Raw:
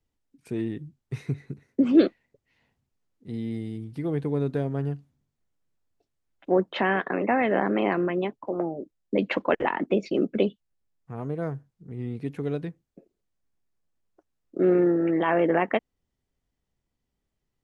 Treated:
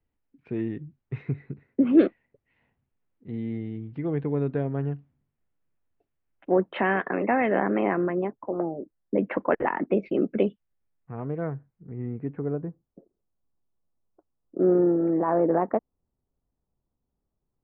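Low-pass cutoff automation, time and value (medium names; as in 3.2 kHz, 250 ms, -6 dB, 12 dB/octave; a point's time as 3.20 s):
low-pass 24 dB/octave
7.63 s 2.7 kHz
8.13 s 1.8 kHz
9.30 s 1.8 kHz
10.16 s 2.5 kHz
11.42 s 2.5 kHz
12.27 s 1.7 kHz
12.67 s 1.2 kHz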